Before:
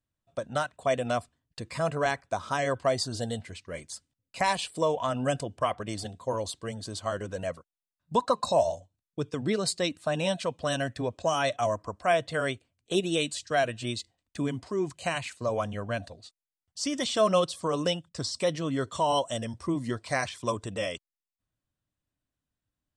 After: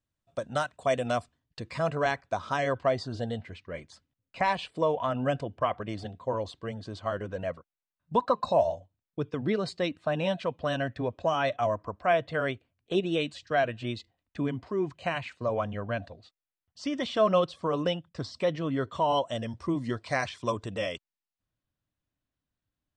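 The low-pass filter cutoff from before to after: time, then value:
0:00.99 8,900 Hz
0:01.61 5,000 Hz
0:02.56 5,000 Hz
0:03.01 2,900 Hz
0:19.09 2,900 Hz
0:19.67 5,000 Hz

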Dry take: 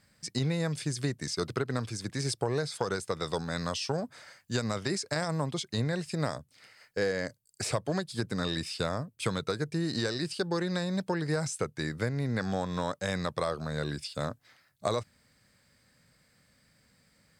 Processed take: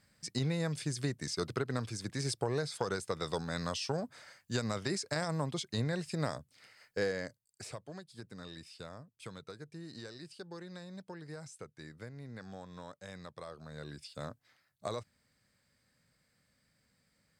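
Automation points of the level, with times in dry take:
0:07.04 −3.5 dB
0:07.85 −16 dB
0:13.40 −16 dB
0:14.27 −8.5 dB

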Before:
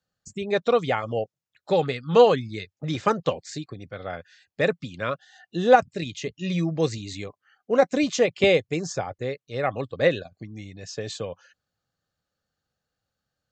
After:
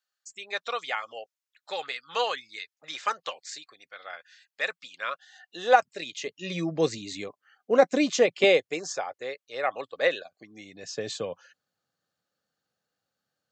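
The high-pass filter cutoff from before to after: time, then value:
0:04.84 1,200 Hz
0:06.19 490 Hz
0:06.77 220 Hz
0:08.13 220 Hz
0:08.99 600 Hz
0:10.30 600 Hz
0:11.02 180 Hz

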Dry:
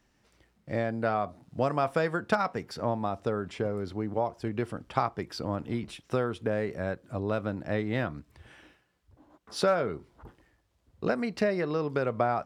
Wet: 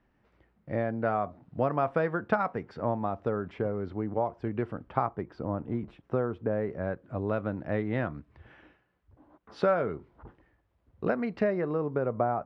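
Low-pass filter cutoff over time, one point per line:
0:04.64 1,900 Hz
0:05.36 1,200 Hz
0:06.45 1,200 Hz
0:07.22 2,100 Hz
0:11.36 2,100 Hz
0:11.87 1,100 Hz

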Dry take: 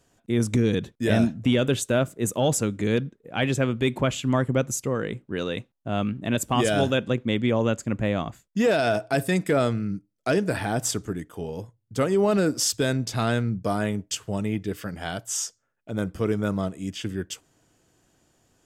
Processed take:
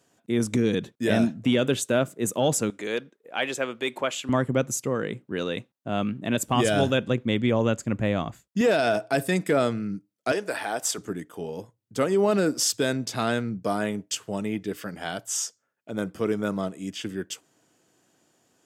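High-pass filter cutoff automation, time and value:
150 Hz
from 0:02.70 470 Hz
from 0:04.29 130 Hz
from 0:06.48 55 Hz
from 0:08.61 160 Hz
from 0:10.32 480 Hz
from 0:10.98 180 Hz

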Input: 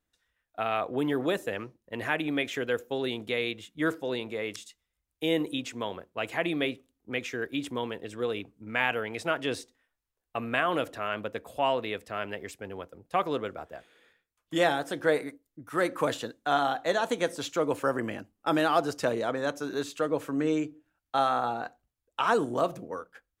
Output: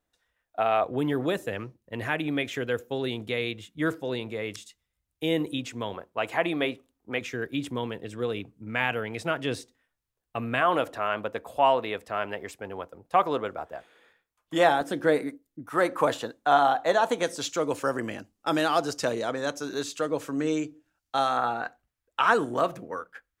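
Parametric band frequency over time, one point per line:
parametric band +7 dB 1.4 octaves
680 Hz
from 0:00.84 110 Hz
from 0:05.94 910 Hz
from 0:07.21 130 Hz
from 0:10.61 890 Hz
from 0:14.81 240 Hz
from 0:15.66 850 Hz
from 0:17.23 6,000 Hz
from 0:21.37 1,700 Hz

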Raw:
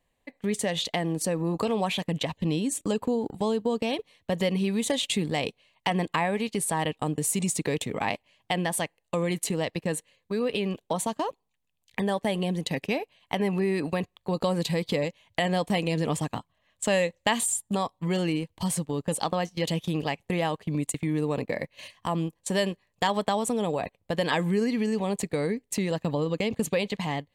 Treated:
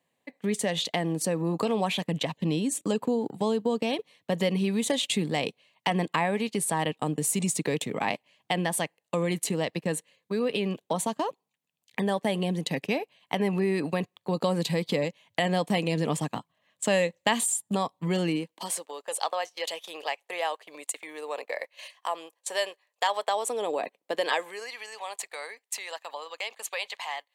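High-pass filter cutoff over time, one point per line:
high-pass filter 24 dB per octave
0:18.26 130 Hz
0:18.91 540 Hz
0:23.18 540 Hz
0:23.96 250 Hz
0:24.73 750 Hz

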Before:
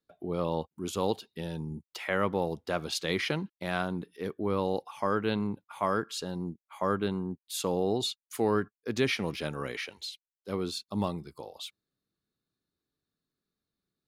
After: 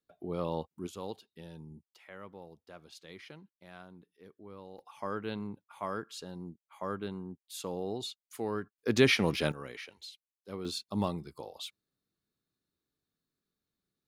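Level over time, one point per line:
−3.5 dB
from 0:00.87 −11.5 dB
from 0:01.84 −19.5 dB
from 0:04.79 −8 dB
from 0:08.78 +4 dB
from 0:09.52 −8 dB
from 0:10.65 −1 dB

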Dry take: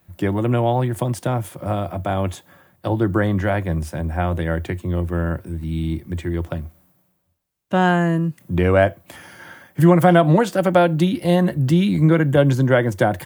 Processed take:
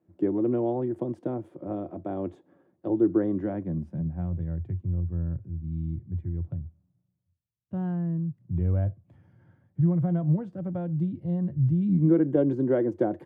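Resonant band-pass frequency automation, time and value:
resonant band-pass, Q 2.7
0:03.35 330 Hz
0:04.46 110 Hz
0:11.77 110 Hz
0:12.18 340 Hz

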